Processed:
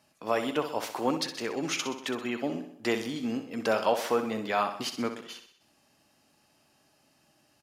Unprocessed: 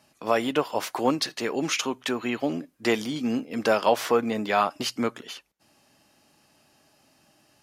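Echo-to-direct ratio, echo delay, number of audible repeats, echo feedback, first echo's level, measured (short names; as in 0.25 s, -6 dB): -8.5 dB, 63 ms, 5, 54%, -10.0 dB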